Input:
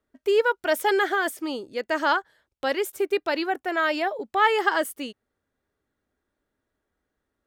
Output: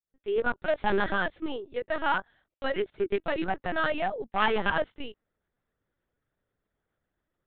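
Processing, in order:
fade in at the beginning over 0.59 s
0:01.78–0:02.73: high-pass filter 230 Hz 24 dB per octave
asymmetric clip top −20.5 dBFS
linear-prediction vocoder at 8 kHz pitch kept
level −2.5 dB

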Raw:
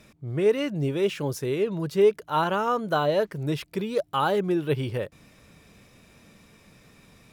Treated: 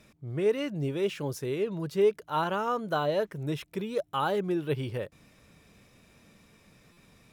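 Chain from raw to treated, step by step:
0:03.21–0:04.28: notch filter 4,600 Hz, Q 7.7
buffer that repeats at 0:06.92, samples 256, times 8
level −4.5 dB

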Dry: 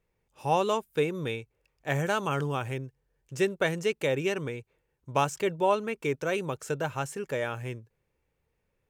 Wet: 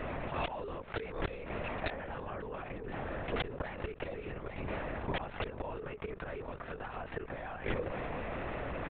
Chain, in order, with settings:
compressor on every frequency bin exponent 0.6
high-pass filter 120 Hz 24 dB per octave
three-way crossover with the lows and the highs turned down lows −20 dB, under 250 Hz, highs −13 dB, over 2,700 Hz
mains-hum notches 60/120/180/240/300 Hz
comb filter 7.3 ms, depth 80%
gate with flip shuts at −20 dBFS, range −39 dB
wrap-around overflow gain 23 dB
linear-prediction vocoder at 8 kHz whisper
envelope flattener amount 70%
level −1 dB

